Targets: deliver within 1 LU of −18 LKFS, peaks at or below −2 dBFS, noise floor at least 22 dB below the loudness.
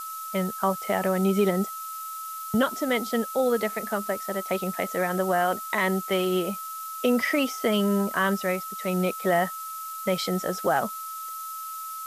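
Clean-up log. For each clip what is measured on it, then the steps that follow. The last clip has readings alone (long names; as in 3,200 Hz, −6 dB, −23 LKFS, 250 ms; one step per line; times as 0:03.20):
interfering tone 1,300 Hz; level of the tone −34 dBFS; background noise floor −36 dBFS; target noise floor −49 dBFS; integrated loudness −26.5 LKFS; sample peak −11.0 dBFS; target loudness −18.0 LKFS
→ notch filter 1,300 Hz, Q 30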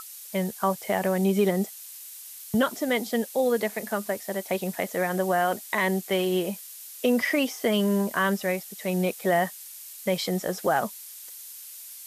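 interfering tone none found; background noise floor −43 dBFS; target noise floor −49 dBFS
→ noise reduction from a noise print 6 dB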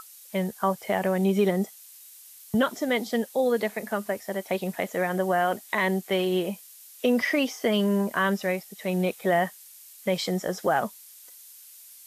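background noise floor −49 dBFS; integrated loudness −26.5 LKFS; sample peak −12.0 dBFS; target loudness −18.0 LKFS
→ level +8.5 dB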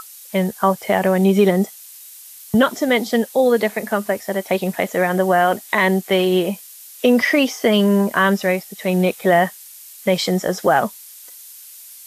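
integrated loudness −18.0 LKFS; sample peak −3.5 dBFS; background noise floor −41 dBFS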